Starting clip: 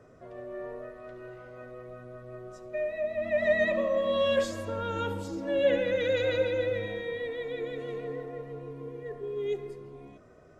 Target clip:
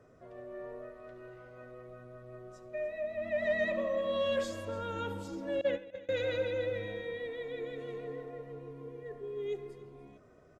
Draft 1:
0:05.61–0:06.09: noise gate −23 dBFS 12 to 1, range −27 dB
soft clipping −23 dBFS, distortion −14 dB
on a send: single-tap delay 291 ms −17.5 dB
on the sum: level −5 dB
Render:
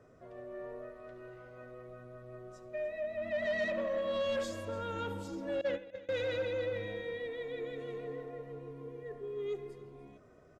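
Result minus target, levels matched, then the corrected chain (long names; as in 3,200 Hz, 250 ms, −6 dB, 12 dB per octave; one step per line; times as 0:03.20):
soft clipping: distortion +11 dB
0:05.61–0:06.09: noise gate −23 dBFS 12 to 1, range −27 dB
soft clipping −15 dBFS, distortion −26 dB
on a send: single-tap delay 291 ms −17.5 dB
on the sum: level −5 dB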